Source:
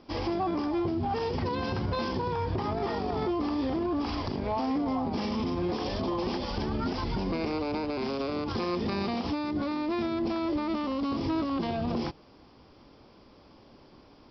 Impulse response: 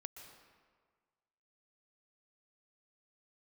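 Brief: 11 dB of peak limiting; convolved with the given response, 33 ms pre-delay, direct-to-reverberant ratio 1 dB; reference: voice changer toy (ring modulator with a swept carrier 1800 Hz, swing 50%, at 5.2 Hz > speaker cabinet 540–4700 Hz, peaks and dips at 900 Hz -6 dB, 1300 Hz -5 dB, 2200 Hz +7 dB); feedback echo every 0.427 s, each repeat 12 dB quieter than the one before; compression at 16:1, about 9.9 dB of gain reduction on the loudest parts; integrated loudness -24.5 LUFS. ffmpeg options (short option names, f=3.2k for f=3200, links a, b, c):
-filter_complex "[0:a]acompressor=threshold=-36dB:ratio=16,alimiter=level_in=15dB:limit=-24dB:level=0:latency=1,volume=-15dB,aecho=1:1:427|854|1281:0.251|0.0628|0.0157,asplit=2[a][b];[1:a]atrim=start_sample=2205,adelay=33[c];[b][c]afir=irnorm=-1:irlink=0,volume=3.5dB[d];[a][d]amix=inputs=2:normalize=0,aeval=exprs='val(0)*sin(2*PI*1800*n/s+1800*0.5/5.2*sin(2*PI*5.2*n/s))':c=same,highpass=540,equalizer=f=900:t=q:w=4:g=-6,equalizer=f=1.3k:t=q:w=4:g=-5,equalizer=f=2.2k:t=q:w=4:g=7,lowpass=f=4.7k:w=0.5412,lowpass=f=4.7k:w=1.3066,volume=18.5dB"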